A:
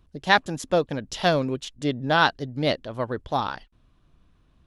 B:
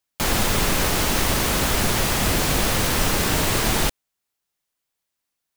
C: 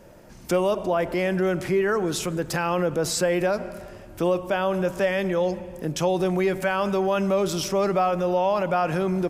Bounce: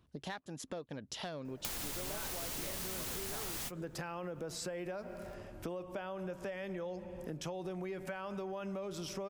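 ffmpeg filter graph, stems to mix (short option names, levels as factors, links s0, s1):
-filter_complex "[0:a]highpass=87,acompressor=threshold=0.02:ratio=2.5,aeval=exprs='0.168*(cos(1*acos(clip(val(0)/0.168,-1,1)))-cos(1*PI/2))+0.00944*(cos(5*acos(clip(val(0)/0.168,-1,1)))-cos(5*PI/2))':c=same,volume=0.473,asplit=2[s0][s1];[1:a]crystalizer=i=3:c=0,adelay=1450,volume=0.473[s2];[2:a]adelay=1450,volume=0.501[s3];[s1]apad=whole_len=309358[s4];[s2][s4]sidechaingate=range=0.00398:threshold=0.00141:ratio=16:detection=peak[s5];[s5][s3]amix=inputs=2:normalize=0,highshelf=f=6900:g=-5.5,acompressor=threshold=0.0562:ratio=6,volume=1[s6];[s0][s6]amix=inputs=2:normalize=0,acompressor=threshold=0.01:ratio=4"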